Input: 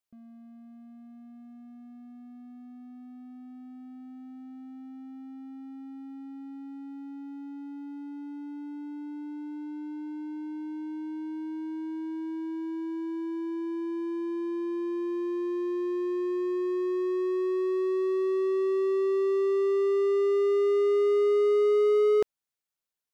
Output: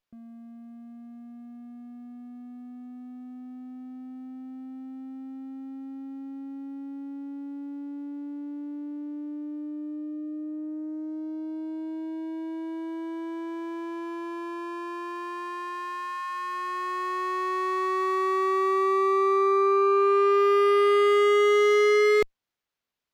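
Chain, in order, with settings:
harmonic generator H 3 −29 dB, 7 −10 dB, 8 −33 dB, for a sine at −16.5 dBFS
windowed peak hold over 5 samples
level +2 dB

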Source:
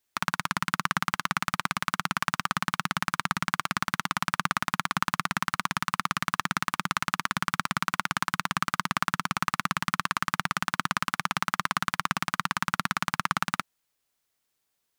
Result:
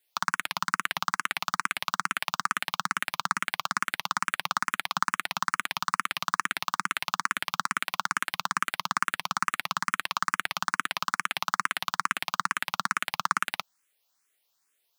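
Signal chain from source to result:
high-pass filter 600 Hz 6 dB per octave
in parallel at +2 dB: brickwall limiter −15.5 dBFS, peak gain reduction 10 dB
on the sum: frequency shifter mixed with the dry sound +2.3 Hz

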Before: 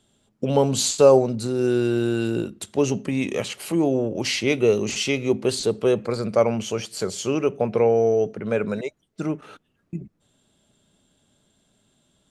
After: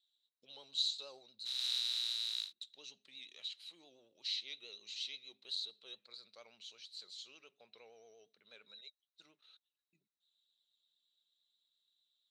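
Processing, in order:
0:01.45–0:02.51: compressing power law on the bin magnitudes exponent 0.13
pitch vibrato 8.6 Hz 58 cents
resonant band-pass 3,900 Hz, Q 17

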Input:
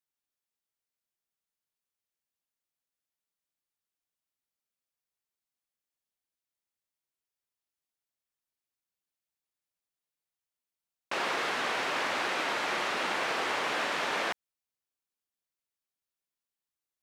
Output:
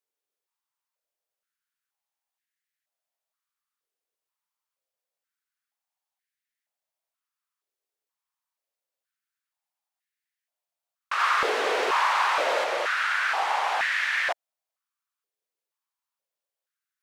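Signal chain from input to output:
0:11.19–0:12.64: leveller curve on the samples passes 1
high-pass on a step sequencer 2.1 Hz 440–1,800 Hz

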